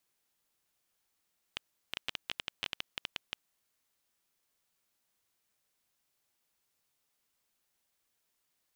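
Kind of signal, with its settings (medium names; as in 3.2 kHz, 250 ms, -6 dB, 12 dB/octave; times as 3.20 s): random clicks 8 per s -16.5 dBFS 2.36 s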